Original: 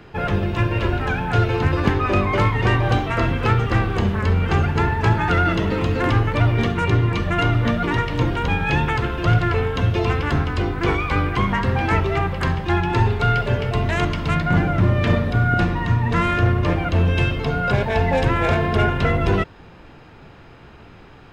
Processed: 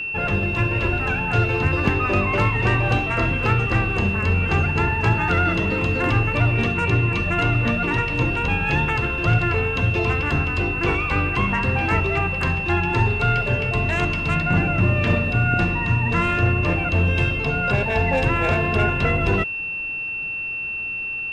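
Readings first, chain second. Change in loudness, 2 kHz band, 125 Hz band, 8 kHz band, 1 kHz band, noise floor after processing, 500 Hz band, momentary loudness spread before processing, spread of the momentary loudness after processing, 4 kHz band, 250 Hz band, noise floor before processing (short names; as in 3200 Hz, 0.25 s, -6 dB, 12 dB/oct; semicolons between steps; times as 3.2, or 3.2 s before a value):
-0.5 dB, +3.5 dB, -2.0 dB, n/a, -2.0 dB, -28 dBFS, -2.0 dB, 3 LU, 3 LU, -2.0 dB, -2.0 dB, -44 dBFS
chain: whine 2700 Hz -23 dBFS; gain -2 dB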